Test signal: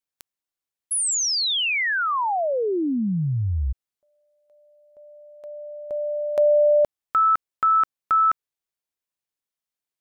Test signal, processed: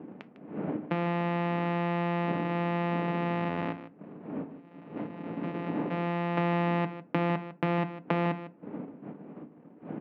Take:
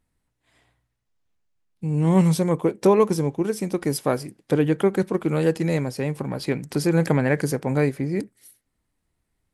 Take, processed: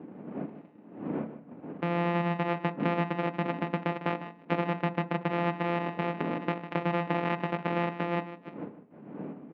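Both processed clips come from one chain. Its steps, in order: sample sorter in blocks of 256 samples; wind noise 250 Hz -38 dBFS; transient shaper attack +3 dB, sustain -8 dB; in parallel at -2.5 dB: limiter -13.5 dBFS; on the sum: compressor 3:1, threshold -30 dBFS; elliptic band-pass 190–2600 Hz, stop band 70 dB; on a send: echo 0.152 s -13 dB; on the sum: FDN reverb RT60 0.38 s, low-frequency decay 1.25×, high-frequency decay 0.55×, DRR 10.5 dB; gain +2 dB

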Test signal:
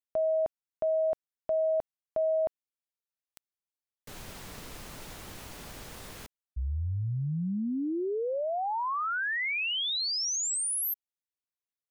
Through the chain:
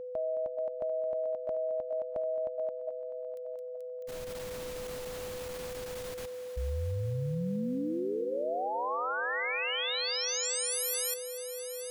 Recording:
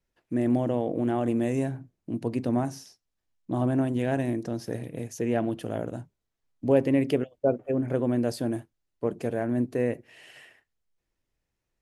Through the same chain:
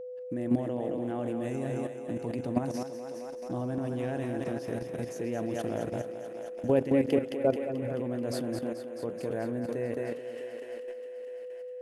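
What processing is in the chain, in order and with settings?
thinning echo 0.217 s, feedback 77%, high-pass 230 Hz, level -6 dB; level quantiser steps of 11 dB; whine 500 Hz -38 dBFS

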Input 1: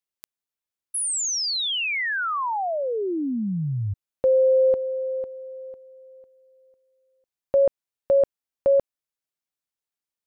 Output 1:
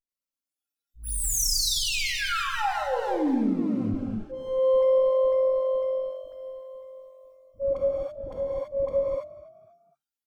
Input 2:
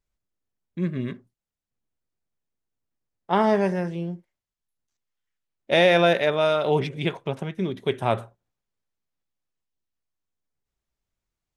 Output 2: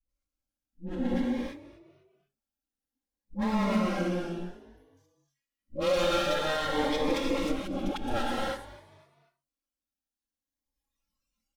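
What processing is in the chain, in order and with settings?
minimum comb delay 3.6 ms; non-linear reverb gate 0.36 s flat, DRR 0.5 dB; in parallel at -2.5 dB: vocal rider within 3 dB 0.5 s; on the sum: auto swell 0.395 s; dispersion highs, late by 88 ms, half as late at 450 Hz; compressor 2.5:1, threshold -30 dBFS; comb 3.8 ms, depth 47%; on a send: frequency-shifting echo 0.248 s, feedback 36%, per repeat +46 Hz, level -18 dB; on the sum: spectral noise reduction 13 dB; cascading phaser rising 0.54 Hz; gain +2 dB

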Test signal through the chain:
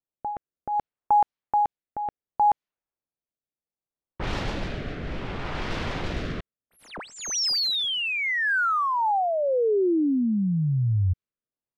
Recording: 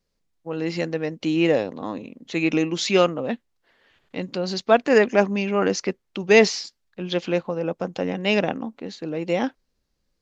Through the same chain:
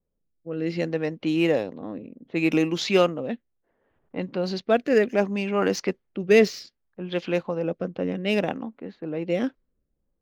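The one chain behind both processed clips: median filter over 5 samples; rotary speaker horn 0.65 Hz; low-pass opened by the level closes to 830 Hz, open at -19.5 dBFS

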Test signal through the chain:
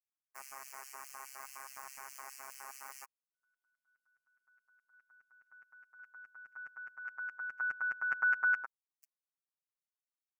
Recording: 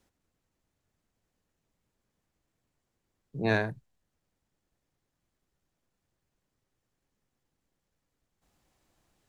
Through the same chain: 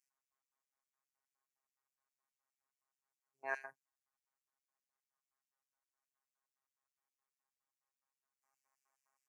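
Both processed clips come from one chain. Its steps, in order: low shelf 130 Hz +10 dB; comb 4.8 ms, depth 50%; LFO high-pass square 4.8 Hz 1000–3200 Hz; robotiser 135 Hz; Butterworth band-stop 3600 Hz, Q 1.1; gain -9 dB

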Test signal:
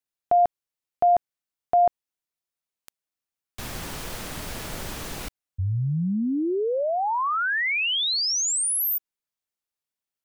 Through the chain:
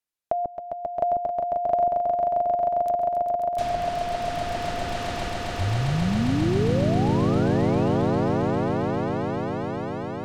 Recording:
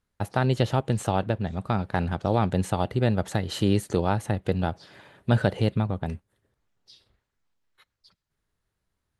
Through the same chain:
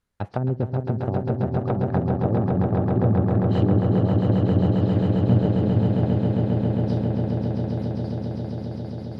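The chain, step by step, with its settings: treble ducked by the level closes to 430 Hz, closed at -21.5 dBFS; swelling echo 0.134 s, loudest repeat 8, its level -5.5 dB

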